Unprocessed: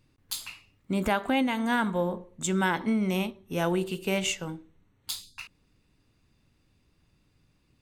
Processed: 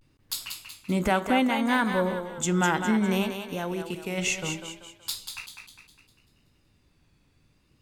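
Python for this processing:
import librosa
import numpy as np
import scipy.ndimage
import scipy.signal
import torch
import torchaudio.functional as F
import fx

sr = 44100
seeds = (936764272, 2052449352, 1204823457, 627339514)

y = fx.level_steps(x, sr, step_db=11, at=(3.37, 4.17), fade=0.02)
y = fx.echo_thinned(y, sr, ms=195, feedback_pct=46, hz=350.0, wet_db=-6.5)
y = fx.vibrato(y, sr, rate_hz=0.66, depth_cents=87.0)
y = y * librosa.db_to_amplitude(2.0)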